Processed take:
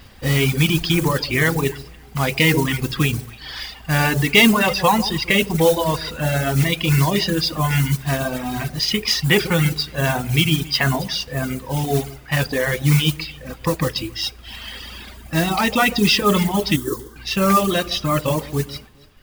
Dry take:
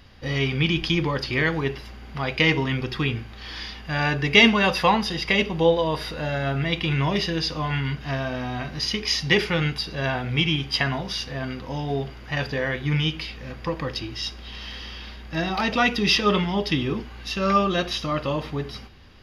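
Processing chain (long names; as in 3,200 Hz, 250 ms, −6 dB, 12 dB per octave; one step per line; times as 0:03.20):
on a send: delay that swaps between a low-pass and a high-pass 139 ms, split 1,000 Hz, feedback 52%, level −8.5 dB
on the sum: dynamic equaliser 150 Hz, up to +4 dB, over −38 dBFS, Q 1.2
in parallel at +2 dB: brickwall limiter −14 dBFS, peak gain reduction 11.5 dB
on the sum: noise that follows the level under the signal 13 dB
0:16.76–0:17.16: phaser with its sweep stopped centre 680 Hz, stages 6
reverb reduction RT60 1.7 s
level −1 dB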